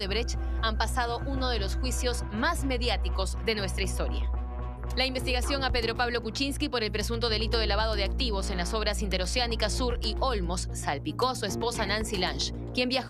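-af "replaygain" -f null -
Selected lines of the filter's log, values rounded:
track_gain = +9.1 dB
track_peak = 0.176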